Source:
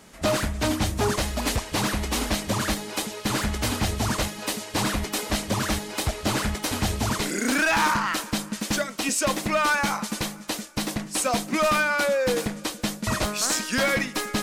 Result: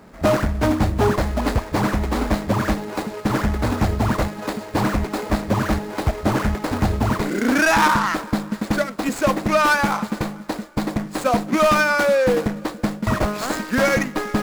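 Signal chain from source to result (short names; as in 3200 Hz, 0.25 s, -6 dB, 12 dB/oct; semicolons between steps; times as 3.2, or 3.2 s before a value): median filter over 15 samples; gain +6.5 dB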